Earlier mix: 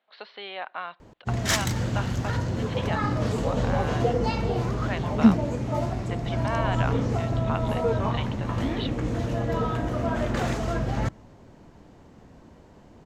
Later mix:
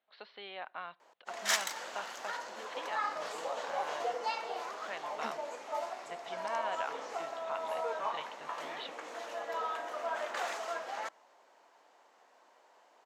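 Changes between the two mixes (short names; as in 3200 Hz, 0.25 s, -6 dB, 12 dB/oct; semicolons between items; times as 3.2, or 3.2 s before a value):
speech -8.5 dB; background: add ladder high-pass 560 Hz, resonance 20%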